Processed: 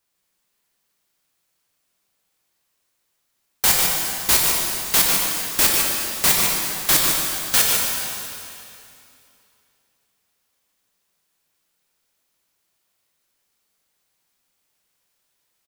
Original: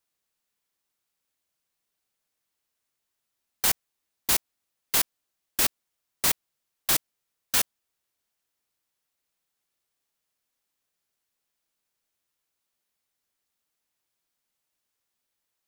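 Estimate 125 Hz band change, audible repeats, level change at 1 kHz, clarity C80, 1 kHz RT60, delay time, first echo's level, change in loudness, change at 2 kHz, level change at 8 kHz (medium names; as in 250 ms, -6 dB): +10.5 dB, 1, +10.5 dB, -0.5 dB, 2.7 s, 148 ms, -5.5 dB, +8.5 dB, +10.0 dB, +10.0 dB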